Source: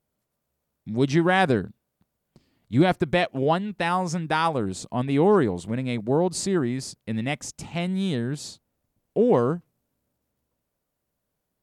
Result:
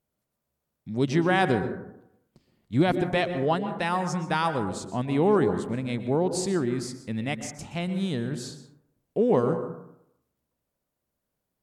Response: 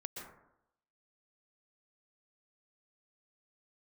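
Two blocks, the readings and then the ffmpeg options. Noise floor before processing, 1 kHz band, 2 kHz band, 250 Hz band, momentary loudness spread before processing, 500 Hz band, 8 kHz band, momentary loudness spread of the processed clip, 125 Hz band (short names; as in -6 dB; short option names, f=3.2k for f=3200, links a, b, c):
-80 dBFS, -2.5 dB, -2.5 dB, -2.0 dB, 11 LU, -2.0 dB, -2.5 dB, 11 LU, -2.5 dB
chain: -filter_complex "[0:a]asplit=2[a][b];[1:a]atrim=start_sample=2205[c];[b][c]afir=irnorm=-1:irlink=0,volume=-1dB[d];[a][d]amix=inputs=2:normalize=0,volume=-6.5dB"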